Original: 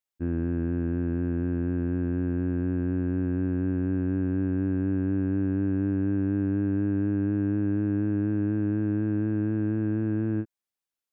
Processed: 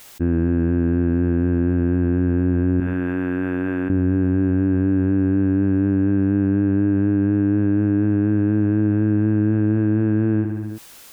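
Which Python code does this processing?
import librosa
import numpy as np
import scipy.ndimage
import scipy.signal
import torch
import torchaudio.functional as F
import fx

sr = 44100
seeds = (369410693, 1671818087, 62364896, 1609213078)

p1 = fx.highpass(x, sr, hz=1400.0, slope=6, at=(2.8, 3.9))
p2 = p1 + fx.echo_feedback(p1, sr, ms=66, feedback_pct=55, wet_db=-17, dry=0)
p3 = fx.env_flatten(p2, sr, amount_pct=70)
y = F.gain(torch.from_numpy(p3), 6.5).numpy()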